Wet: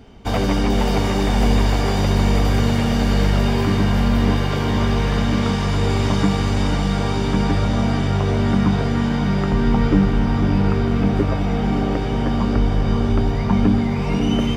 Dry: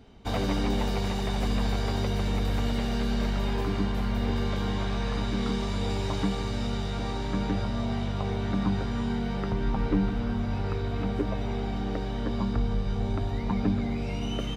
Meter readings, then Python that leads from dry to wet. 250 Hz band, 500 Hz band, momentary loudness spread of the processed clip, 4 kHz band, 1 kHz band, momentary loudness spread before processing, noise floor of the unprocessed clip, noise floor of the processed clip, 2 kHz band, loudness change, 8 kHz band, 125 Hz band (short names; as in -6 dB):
+10.5 dB, +10.0 dB, 3 LU, +8.5 dB, +10.5 dB, 4 LU, -31 dBFS, -21 dBFS, +10.5 dB, +10.5 dB, +10.5 dB, +11.0 dB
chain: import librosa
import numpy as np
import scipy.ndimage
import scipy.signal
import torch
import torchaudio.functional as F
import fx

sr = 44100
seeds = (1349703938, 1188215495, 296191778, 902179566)

y = fx.notch(x, sr, hz=3900.0, q=9.3)
y = fx.echo_diffused(y, sr, ms=541, feedback_pct=61, wet_db=-4)
y = y * 10.0 ** (8.5 / 20.0)